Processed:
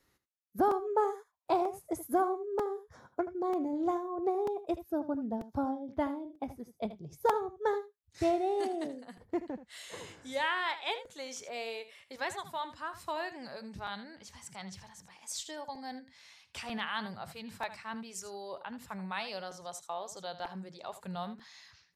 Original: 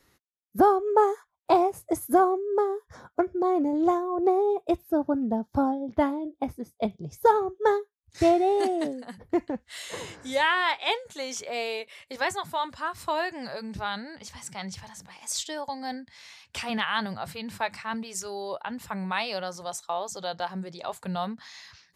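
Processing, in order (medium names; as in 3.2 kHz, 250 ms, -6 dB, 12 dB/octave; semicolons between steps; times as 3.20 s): delay 79 ms -13.5 dB; crackling interface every 0.94 s, samples 128, repeat, from 0.71 s; trim -8.5 dB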